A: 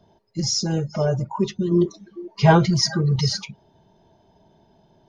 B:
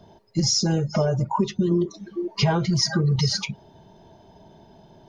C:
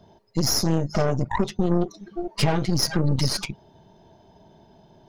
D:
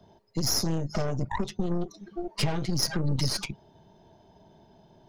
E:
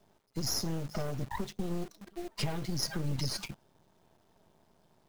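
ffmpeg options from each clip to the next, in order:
-af "acompressor=threshold=-25dB:ratio=10,volume=7dB"
-af "aeval=exprs='0.398*(cos(1*acos(clip(val(0)/0.398,-1,1)))-cos(1*PI/2))+0.0355*(cos(3*acos(clip(val(0)/0.398,-1,1)))-cos(3*PI/2))+0.0316*(cos(4*acos(clip(val(0)/0.398,-1,1)))-cos(4*PI/2))+0.0316*(cos(8*acos(clip(val(0)/0.398,-1,1)))-cos(8*PI/2))':c=same"
-filter_complex "[0:a]acrossover=split=130|3000[a][b][c];[b]acompressor=threshold=-25dB:ratio=3[d];[a][d][c]amix=inputs=3:normalize=0,volume=-3.5dB"
-af "acrusher=bits=8:dc=4:mix=0:aa=0.000001,volume=-6.5dB"

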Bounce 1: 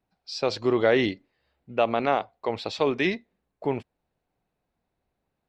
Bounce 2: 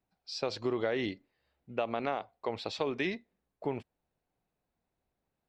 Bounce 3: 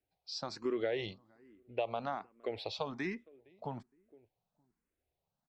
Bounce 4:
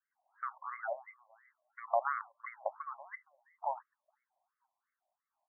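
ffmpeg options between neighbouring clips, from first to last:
-af "acompressor=threshold=-23dB:ratio=5,volume=-5dB"
-filter_complex "[0:a]asplit=2[a][b];[b]adelay=463,lowpass=f=820:p=1,volume=-23.5dB,asplit=2[c][d];[d]adelay=463,lowpass=f=820:p=1,volume=0.32[e];[a][c][e]amix=inputs=3:normalize=0,asplit=2[f][g];[g]afreqshift=1.2[h];[f][h]amix=inputs=2:normalize=1,volume=-1.5dB"
-af "afftfilt=real='re*between(b*sr/1024,770*pow(1600/770,0.5+0.5*sin(2*PI*2.9*pts/sr))/1.41,770*pow(1600/770,0.5+0.5*sin(2*PI*2.9*pts/sr))*1.41)':imag='im*between(b*sr/1024,770*pow(1600/770,0.5+0.5*sin(2*PI*2.9*pts/sr))/1.41,770*pow(1600/770,0.5+0.5*sin(2*PI*2.9*pts/sr))*1.41)':win_size=1024:overlap=0.75,volume=9.5dB"

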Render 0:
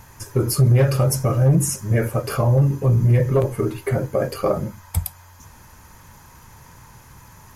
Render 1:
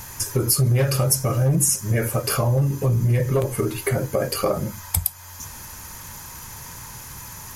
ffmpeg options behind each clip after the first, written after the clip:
-af "highshelf=f=2.8k:g=11,acompressor=threshold=-27dB:ratio=2,volume=4dB"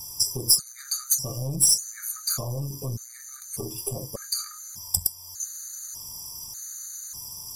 -af "aeval=exprs='(tanh(3.16*val(0)+0.65)-tanh(0.65))/3.16':c=same,highshelf=f=3.8k:t=q:w=3:g=13,afftfilt=real='re*gt(sin(2*PI*0.84*pts/sr)*(1-2*mod(floor(b*sr/1024/1200),2)),0)':imag='im*gt(sin(2*PI*0.84*pts/sr)*(1-2*mod(floor(b*sr/1024/1200),2)),0)':win_size=1024:overlap=0.75,volume=-8dB"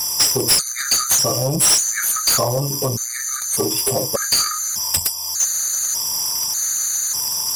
-filter_complex "[0:a]asplit=2[a][b];[b]highpass=f=720:p=1,volume=28dB,asoftclip=type=tanh:threshold=-3dB[c];[a][c]amix=inputs=2:normalize=0,lowpass=f=5.3k:p=1,volume=-6dB"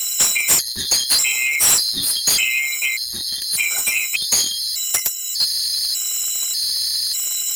-filter_complex "[0:a]afftfilt=real='real(if(lt(b,920),b+92*(1-2*mod(floor(b/92),2)),b),0)':imag='imag(if(lt(b,920),b+92*(1-2*mod(floor(b/92),2)),b),0)':win_size=2048:overlap=0.75,acrossover=split=120|1600|3500[a][b][c][d];[b]acrusher=bits=6:mix=0:aa=0.000001[e];[a][e][c][d]amix=inputs=4:normalize=0"

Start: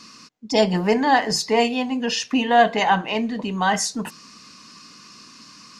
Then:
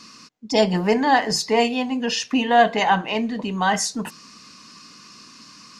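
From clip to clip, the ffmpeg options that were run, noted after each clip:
-af anull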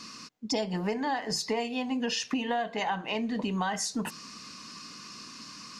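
-af "acompressor=threshold=-27dB:ratio=10"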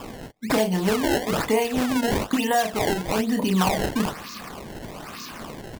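-filter_complex "[0:a]asplit=2[a][b];[b]adelay=32,volume=-5dB[c];[a][c]amix=inputs=2:normalize=0,acrusher=samples=21:mix=1:aa=0.000001:lfo=1:lforange=33.6:lforate=1.1,volume=7dB"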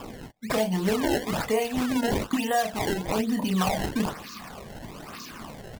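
-af "flanger=delay=0:depth=1.8:regen=-37:speed=0.97:shape=triangular"

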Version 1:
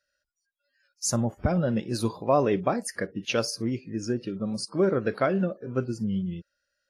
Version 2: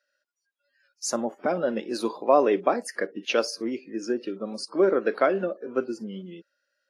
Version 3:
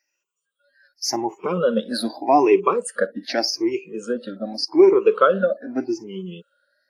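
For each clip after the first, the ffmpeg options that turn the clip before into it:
-af "highpass=f=280:w=0.5412,highpass=f=280:w=1.3066,highshelf=f=6.2k:g=-11,volume=3.5dB"
-af "afftfilt=real='re*pow(10,24/40*sin(2*PI*(0.73*log(max(b,1)*sr/1024/100)/log(2)-(0.84)*(pts-256)/sr)))':imag='im*pow(10,24/40*sin(2*PI*(0.73*log(max(b,1)*sr/1024/100)/log(2)-(0.84)*(pts-256)/sr)))':win_size=1024:overlap=0.75"

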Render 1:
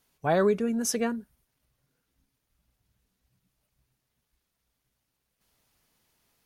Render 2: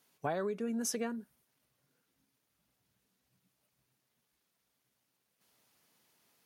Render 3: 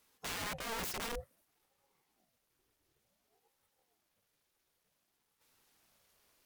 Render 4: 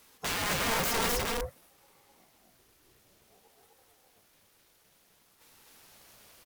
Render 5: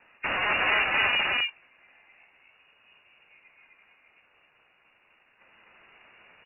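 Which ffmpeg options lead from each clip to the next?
-af "highpass=160,acompressor=threshold=-32dB:ratio=8"
-af "aeval=exprs='(mod(56.2*val(0)+1,2)-1)/56.2':c=same,aeval=exprs='val(0)*sin(2*PI*430*n/s+430*0.6/0.55*sin(2*PI*0.55*n/s))':c=same,volume=3dB"
-filter_complex "[0:a]aeval=exprs='0.0251*(cos(1*acos(clip(val(0)/0.0251,-1,1)))-cos(1*PI/2))+0.00355*(cos(3*acos(clip(val(0)/0.0251,-1,1)))-cos(3*PI/2))+0.00447*(cos(5*acos(clip(val(0)/0.0251,-1,1)))-cos(5*PI/2))':c=same,asplit=2[a][b];[b]aecho=0:1:186.6|253.6:0.355|0.891[c];[a][c]amix=inputs=2:normalize=0,volume=9dB"
-af "lowpass=f=2.5k:t=q:w=0.5098,lowpass=f=2.5k:t=q:w=0.6013,lowpass=f=2.5k:t=q:w=0.9,lowpass=f=2.5k:t=q:w=2.563,afreqshift=-2900,volume=6.5dB"

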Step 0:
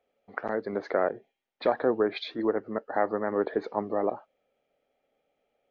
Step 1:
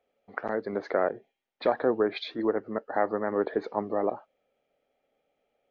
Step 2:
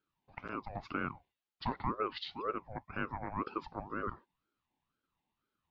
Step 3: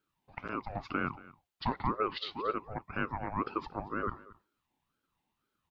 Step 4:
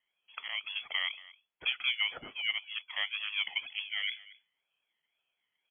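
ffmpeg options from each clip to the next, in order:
-af anull
-af "equalizer=f=160:t=o:w=0.67:g=-11,equalizer=f=1k:t=o:w=0.67:g=-12,equalizer=f=4k:t=o:w=0.67:g=5,aeval=exprs='val(0)*sin(2*PI*580*n/s+580*0.5/2*sin(2*PI*2*n/s))':c=same,volume=-5.5dB"
-af "aecho=1:1:230:0.1,volume=3.5dB"
-af "lowpass=f=2.9k:t=q:w=0.5098,lowpass=f=2.9k:t=q:w=0.6013,lowpass=f=2.9k:t=q:w=0.9,lowpass=f=2.9k:t=q:w=2.563,afreqshift=-3400"

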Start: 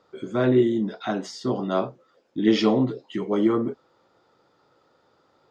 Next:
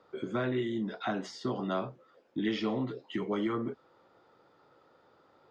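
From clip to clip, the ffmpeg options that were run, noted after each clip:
-filter_complex "[0:a]acrossover=split=170|1200[a][b][c];[a]acompressor=threshold=-38dB:ratio=4[d];[b]acompressor=threshold=-33dB:ratio=4[e];[c]acompressor=threshold=-36dB:ratio=4[f];[d][e][f]amix=inputs=3:normalize=0,bass=f=250:g=-2,treble=f=4k:g=-9"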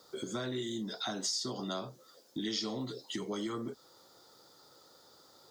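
-af "aexciter=amount=13.9:drive=4.6:freq=3.9k,acompressor=threshold=-38dB:ratio=2"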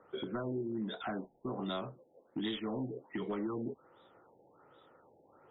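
-af "volume=31.5dB,asoftclip=hard,volume=-31.5dB,afftfilt=real='re*lt(b*sr/1024,860*pow(3900/860,0.5+0.5*sin(2*PI*1.3*pts/sr)))':imag='im*lt(b*sr/1024,860*pow(3900/860,0.5+0.5*sin(2*PI*1.3*pts/sr)))':win_size=1024:overlap=0.75,volume=1dB"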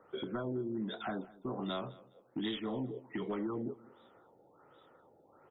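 -af "aecho=1:1:206|412:0.0891|0.0214"

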